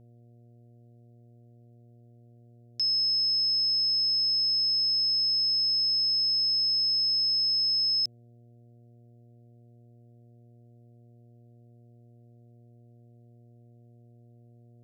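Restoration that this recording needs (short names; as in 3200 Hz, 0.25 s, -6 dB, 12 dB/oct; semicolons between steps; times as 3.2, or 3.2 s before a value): de-hum 118.6 Hz, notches 6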